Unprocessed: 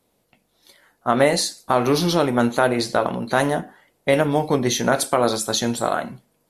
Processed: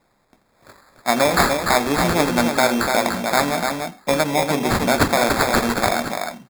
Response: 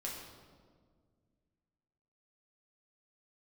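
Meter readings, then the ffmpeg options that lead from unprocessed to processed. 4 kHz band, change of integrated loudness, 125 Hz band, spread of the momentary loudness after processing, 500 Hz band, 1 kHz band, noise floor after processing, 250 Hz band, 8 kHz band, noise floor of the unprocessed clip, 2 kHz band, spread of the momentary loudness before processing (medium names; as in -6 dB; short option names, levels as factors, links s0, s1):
+2.0 dB, +1.5 dB, -0.5 dB, 6 LU, -0.5 dB, +3.5 dB, -63 dBFS, +1.0 dB, +1.0 dB, -68 dBFS, +5.5 dB, 6 LU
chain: -af "highpass=f=170:w=0.5412,highpass=f=170:w=1.3066,aemphasis=mode=production:type=cd,aecho=1:1:1.2:0.44,aecho=1:1:85|219|293:0.133|0.141|0.562,acrusher=samples=15:mix=1:aa=0.000001"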